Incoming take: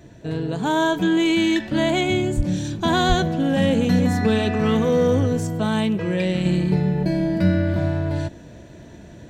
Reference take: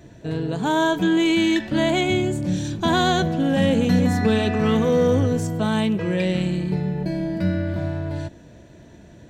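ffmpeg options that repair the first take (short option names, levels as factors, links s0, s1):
-filter_complex "[0:a]asplit=3[s0][s1][s2];[s0]afade=t=out:st=2.36:d=0.02[s3];[s1]highpass=f=140:w=0.5412,highpass=f=140:w=1.3066,afade=t=in:st=2.36:d=0.02,afade=t=out:st=2.48:d=0.02[s4];[s2]afade=t=in:st=2.48:d=0.02[s5];[s3][s4][s5]amix=inputs=3:normalize=0,asplit=3[s6][s7][s8];[s6]afade=t=out:st=3.08:d=0.02[s9];[s7]highpass=f=140:w=0.5412,highpass=f=140:w=1.3066,afade=t=in:st=3.08:d=0.02,afade=t=out:st=3.2:d=0.02[s10];[s8]afade=t=in:st=3.2:d=0.02[s11];[s9][s10][s11]amix=inputs=3:normalize=0,asetnsamples=n=441:p=0,asendcmd='6.45 volume volume -4dB',volume=1"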